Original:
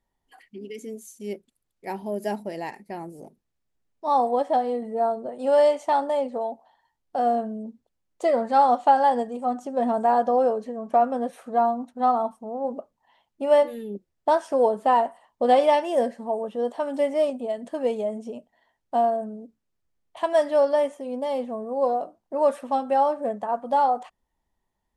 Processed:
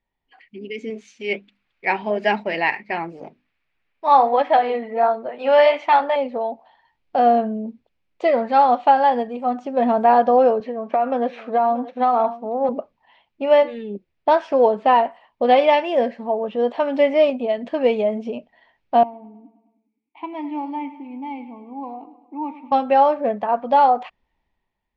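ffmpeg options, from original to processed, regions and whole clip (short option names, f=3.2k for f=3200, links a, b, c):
-filter_complex "[0:a]asettb=1/sr,asplit=3[a][b][c];[a]atrim=end=0.904[d];[b]atrim=start=0.9:end=6.16,asetpts=PTS-STARTPTS,afade=t=in:d=0.004:c=qsin,afade=t=out:st=5.256:d=0.004:c=qsin,equalizer=f=1.8k:w=0.46:g=12.5,bandreject=f=50:t=h:w=6,bandreject=f=100:t=h:w=6,bandreject=f=150:t=h:w=6,bandreject=f=200:t=h:w=6,bandreject=f=250:t=h:w=6,bandreject=f=300:t=h:w=6,flanger=delay=0.8:depth=6.5:regen=-68:speed=1.4:shape=sinusoidal[e];[c]atrim=start=6.156[f];[d][e]acrossfade=d=0.004:c1=hsin:c2=qsin[g];[g][f]acrossfade=d=0.004:c1=qsin:c2=hsin,asettb=1/sr,asplit=3[h][i][j];[h]atrim=end=10.604[k];[i]atrim=start=10.6:end=12.69,asetpts=PTS-STARTPTS,afade=t=in:d=0.004:c=qsin,afade=t=out:st=2.086:d=0.004:c=qsin,aecho=1:1:631:0.141,atrim=end_sample=92169,acompressor=threshold=-21dB:ratio=10:attack=3.2:release=140:knee=1:detection=peak,highpass=250,lowpass=5.9k[l];[j]atrim=start=12.686[m];[k][l]acrossfade=d=0.004:c1=hsin:c2=qsin[n];[n][m]acrossfade=d=0.004:c1=qsin:c2=hsin,asettb=1/sr,asplit=3[o][p][q];[o]atrim=end=19.034[r];[p]atrim=start=19.03:end=22.72,asetpts=PTS-STARTPTS,afade=t=in:d=0.004:c=qsin,afade=t=out:st=3.686:d=0.004:c=qsin,asplit=3[s][t][u];[s]bandpass=f=300:t=q:w=8,volume=0dB[v];[t]bandpass=f=870:t=q:w=8,volume=-6dB[w];[u]bandpass=f=2.24k:t=q:w=8,volume=-9dB[x];[v][w][x]amix=inputs=3:normalize=0,aecho=1:1:104|208|312|416|520|624:0.178|0.103|0.0598|0.0347|0.0201|0.0117,atrim=end_sample=162729[y];[q]atrim=start=22.716[z];[r][y]acrossfade=d=0.004:c1=hsin:c2=qsin[aa];[aa][z]acrossfade=d=0.004:c1=qsin:c2=hsin,lowpass=f=4.6k:w=0.5412,lowpass=f=4.6k:w=1.3066,equalizer=f=2.4k:t=o:w=0.57:g=9.5,dynaudnorm=f=150:g=9:m=11.5dB,volume=-3dB"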